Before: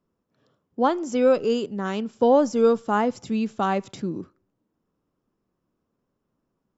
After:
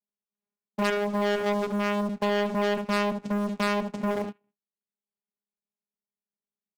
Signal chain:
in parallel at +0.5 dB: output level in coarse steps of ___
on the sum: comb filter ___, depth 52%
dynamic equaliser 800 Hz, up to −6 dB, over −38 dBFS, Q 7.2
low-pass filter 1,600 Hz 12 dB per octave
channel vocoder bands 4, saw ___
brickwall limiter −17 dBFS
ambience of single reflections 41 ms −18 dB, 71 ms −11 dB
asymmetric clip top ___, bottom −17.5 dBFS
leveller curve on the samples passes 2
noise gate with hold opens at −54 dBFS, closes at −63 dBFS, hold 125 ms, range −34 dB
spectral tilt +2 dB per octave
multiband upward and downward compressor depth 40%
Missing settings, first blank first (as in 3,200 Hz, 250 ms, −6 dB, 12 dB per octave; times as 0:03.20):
20 dB, 0.8 ms, 205 Hz, −35 dBFS